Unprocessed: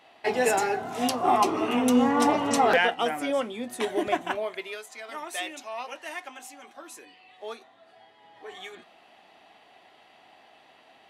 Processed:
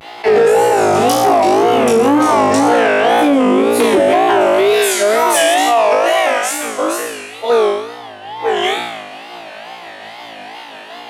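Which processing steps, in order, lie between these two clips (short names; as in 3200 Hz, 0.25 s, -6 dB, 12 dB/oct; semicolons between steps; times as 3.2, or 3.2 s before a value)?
tremolo saw down 5.6 Hz, depth 45%; flutter echo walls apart 3.1 m, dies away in 1.1 s; compressor 6:1, threshold -27 dBFS, peak gain reduction 14 dB; 4.41–5.54 high shelf 5500 Hz +9.5 dB; wow and flutter 140 cents; dynamic EQ 450 Hz, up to +8 dB, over -44 dBFS, Q 0.71; soft clip -19 dBFS, distortion -17 dB; HPF 90 Hz; maximiser +23.5 dB; attack slew limiter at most 420 dB/s; gain -4 dB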